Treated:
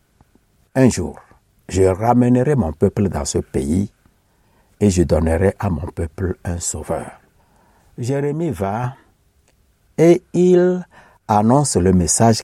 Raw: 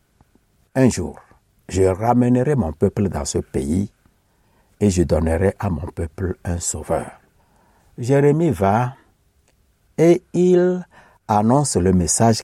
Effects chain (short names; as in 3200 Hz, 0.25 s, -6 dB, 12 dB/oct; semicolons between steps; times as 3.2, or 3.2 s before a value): 6.45–8.84 compressor 6:1, threshold -19 dBFS, peak gain reduction 9 dB; gain +2 dB